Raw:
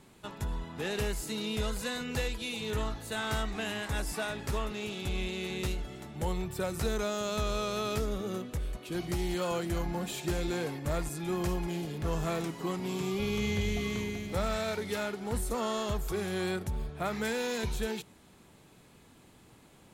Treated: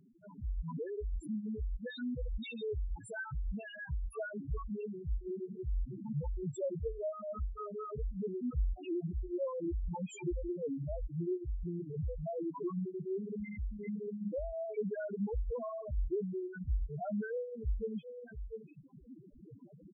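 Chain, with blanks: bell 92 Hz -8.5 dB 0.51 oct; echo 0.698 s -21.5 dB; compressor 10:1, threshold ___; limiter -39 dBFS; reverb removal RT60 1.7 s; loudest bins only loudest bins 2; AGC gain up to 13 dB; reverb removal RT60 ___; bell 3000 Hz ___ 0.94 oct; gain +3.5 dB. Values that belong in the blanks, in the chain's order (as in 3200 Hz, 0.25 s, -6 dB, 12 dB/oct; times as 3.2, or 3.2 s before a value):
-39 dBFS, 0.53 s, -4 dB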